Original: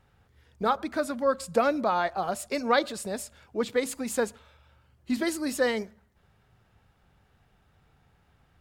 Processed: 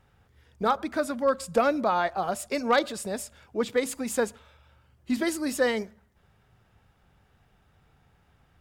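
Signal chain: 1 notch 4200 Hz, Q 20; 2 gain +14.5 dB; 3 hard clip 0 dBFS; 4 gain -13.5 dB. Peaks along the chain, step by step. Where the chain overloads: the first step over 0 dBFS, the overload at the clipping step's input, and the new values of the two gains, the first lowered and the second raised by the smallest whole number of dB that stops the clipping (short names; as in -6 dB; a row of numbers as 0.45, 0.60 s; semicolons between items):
-10.0, +4.5, 0.0, -13.5 dBFS; step 2, 4.5 dB; step 2 +9.5 dB, step 4 -8.5 dB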